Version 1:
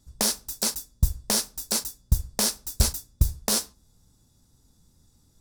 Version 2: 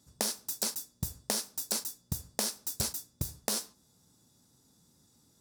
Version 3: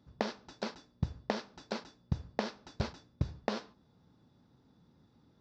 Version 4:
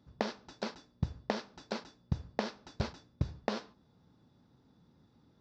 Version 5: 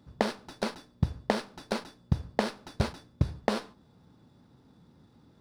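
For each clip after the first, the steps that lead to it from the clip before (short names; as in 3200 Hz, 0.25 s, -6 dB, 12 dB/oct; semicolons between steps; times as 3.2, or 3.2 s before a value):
HPF 160 Hz 12 dB/oct; compressor 6:1, threshold -29 dBFS, peak gain reduction 9.5 dB
Gaussian blur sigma 2.7 samples; gain +3.5 dB
nothing audible
running maximum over 3 samples; gain +6.5 dB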